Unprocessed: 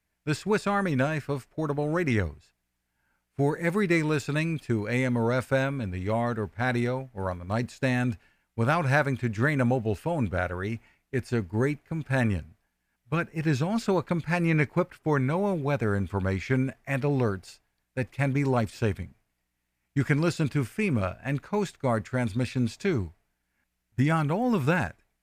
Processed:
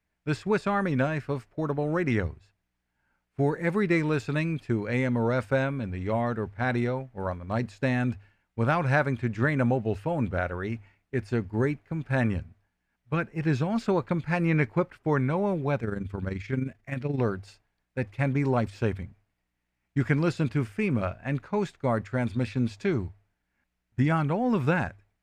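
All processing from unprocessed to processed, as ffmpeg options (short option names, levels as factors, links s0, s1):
-filter_complex "[0:a]asettb=1/sr,asplit=3[s0][s1][s2];[s0]atrim=end=15.804[s3];[s1]atrim=start=15.8:end=17.19,asetpts=PTS-STARTPTS,afade=t=in:d=0.004:c=qsin,afade=t=out:st=1.386:d=0.004:c=qsin,equalizer=f=870:w=0.89:g=-7,tremolo=f=23:d=0.621[s4];[s2]atrim=start=17.186[s5];[s3][s4]acrossfade=d=0.004:c1=hsin:c2=qsin[s6];[s6][s5]acrossfade=d=0.004:c1=qsin:c2=hsin,aemphasis=mode=reproduction:type=50kf,bandreject=f=50:t=h:w=6,bandreject=f=100:t=h:w=6"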